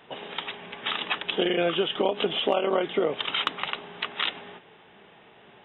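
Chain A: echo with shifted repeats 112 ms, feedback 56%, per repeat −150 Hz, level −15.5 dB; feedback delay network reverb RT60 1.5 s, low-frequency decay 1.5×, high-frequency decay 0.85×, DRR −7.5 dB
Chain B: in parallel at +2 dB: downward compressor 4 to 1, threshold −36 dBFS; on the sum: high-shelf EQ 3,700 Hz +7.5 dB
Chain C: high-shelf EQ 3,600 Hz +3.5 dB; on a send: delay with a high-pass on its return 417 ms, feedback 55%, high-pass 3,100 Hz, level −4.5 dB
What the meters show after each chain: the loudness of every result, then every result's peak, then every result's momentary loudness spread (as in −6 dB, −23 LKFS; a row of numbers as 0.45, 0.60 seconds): −19.0, −23.0, −26.5 LKFS; −3.0, −5.5, −9.0 dBFS; 11, 7, 15 LU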